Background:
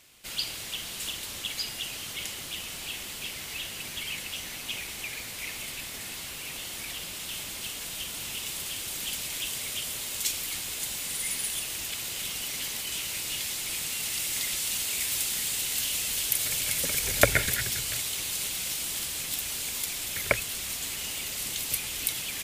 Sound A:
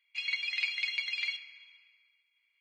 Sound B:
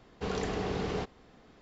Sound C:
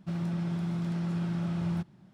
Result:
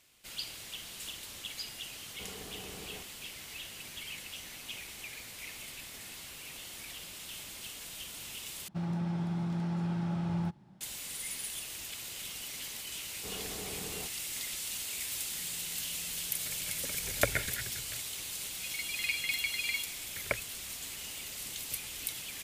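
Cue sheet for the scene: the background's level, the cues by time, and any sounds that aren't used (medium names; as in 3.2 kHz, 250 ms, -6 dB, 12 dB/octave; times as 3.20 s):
background -8 dB
1.98 s: add B -15.5 dB
8.68 s: replace with C -2 dB + peaking EQ 840 Hz +9 dB 0.23 oct
13.02 s: add B -11.5 dB
15.28 s: add C -13 dB + compression 5:1, threshold -46 dBFS
18.46 s: add A -9.5 dB + level rider gain up to 9 dB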